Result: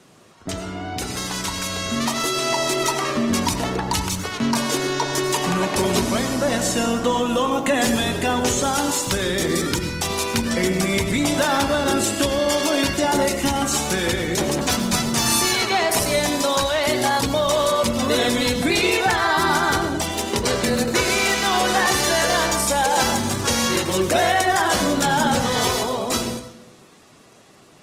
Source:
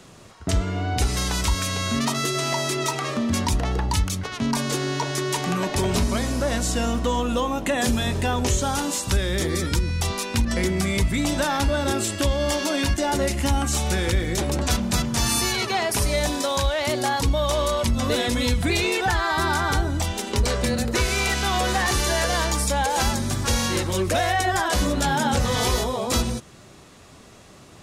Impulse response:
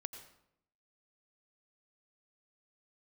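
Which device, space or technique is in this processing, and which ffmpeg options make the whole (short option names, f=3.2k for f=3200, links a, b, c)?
far-field microphone of a smart speaker: -filter_complex "[1:a]atrim=start_sample=2205[a];[0:a][a]afir=irnorm=-1:irlink=0,highpass=150,dynaudnorm=f=190:g=21:m=5.5dB,volume=1.5dB" -ar 48000 -c:a libopus -b:a 20k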